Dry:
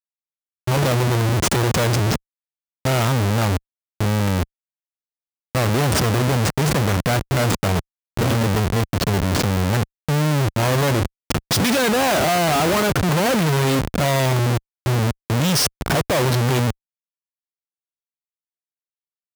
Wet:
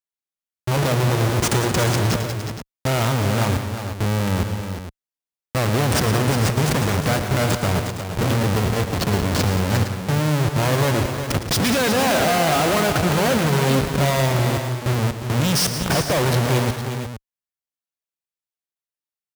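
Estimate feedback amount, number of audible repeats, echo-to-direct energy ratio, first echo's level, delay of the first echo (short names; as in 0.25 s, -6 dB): no steady repeat, 4, -5.0 dB, -11.5 dB, 0.112 s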